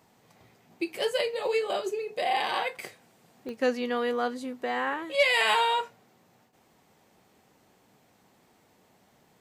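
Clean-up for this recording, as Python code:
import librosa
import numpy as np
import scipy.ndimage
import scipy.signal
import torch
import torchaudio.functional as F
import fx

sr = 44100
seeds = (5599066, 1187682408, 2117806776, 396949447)

y = fx.fix_declip(x, sr, threshold_db=-14.5)
y = fx.fix_declick_ar(y, sr, threshold=10.0)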